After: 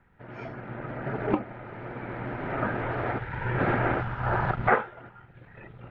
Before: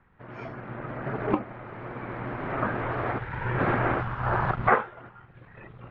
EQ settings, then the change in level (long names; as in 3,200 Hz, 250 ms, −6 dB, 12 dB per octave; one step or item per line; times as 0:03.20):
notch filter 1,100 Hz, Q 6.7
0.0 dB